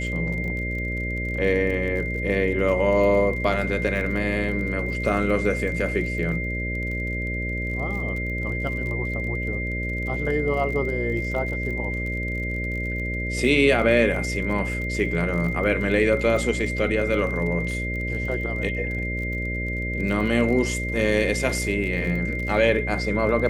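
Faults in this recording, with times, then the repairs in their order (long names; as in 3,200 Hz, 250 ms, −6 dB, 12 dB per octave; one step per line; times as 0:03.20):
mains buzz 60 Hz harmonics 10 −29 dBFS
surface crackle 36 per second −32 dBFS
whistle 2,100 Hz −29 dBFS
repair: click removal
notch filter 2,100 Hz, Q 30
hum removal 60 Hz, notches 10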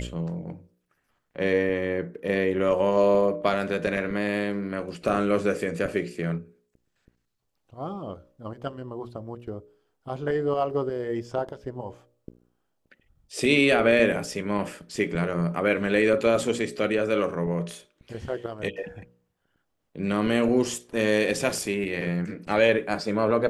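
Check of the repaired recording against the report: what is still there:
none of them is left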